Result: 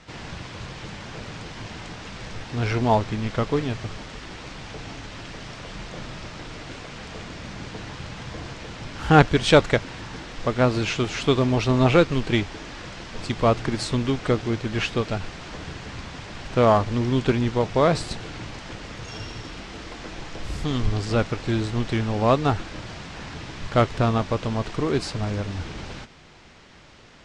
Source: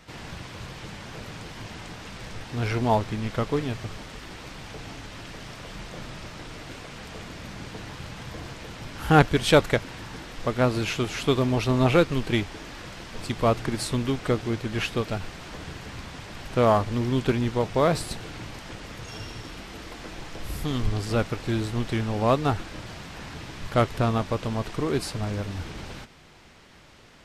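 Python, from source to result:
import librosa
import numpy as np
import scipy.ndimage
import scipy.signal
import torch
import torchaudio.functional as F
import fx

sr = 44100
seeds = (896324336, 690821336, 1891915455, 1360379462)

y = scipy.signal.sosfilt(scipy.signal.butter(4, 7700.0, 'lowpass', fs=sr, output='sos'), x)
y = y * librosa.db_to_amplitude(2.5)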